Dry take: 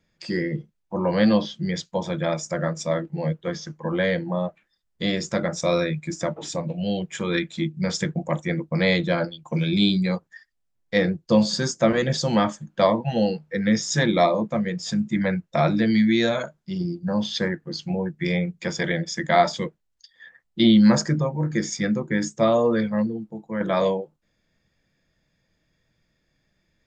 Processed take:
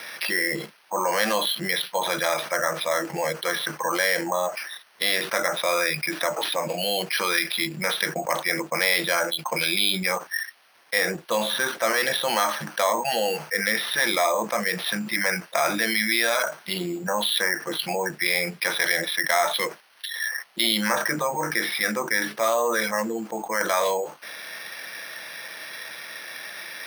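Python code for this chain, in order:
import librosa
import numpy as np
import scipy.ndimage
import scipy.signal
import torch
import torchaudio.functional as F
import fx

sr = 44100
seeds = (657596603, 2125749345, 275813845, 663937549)

y = scipy.signal.sosfilt(scipy.signal.butter(2, 970.0, 'highpass', fs=sr, output='sos'), x)
y = np.repeat(scipy.signal.resample_poly(y, 1, 6), 6)[:len(y)]
y = fx.env_flatten(y, sr, amount_pct=70)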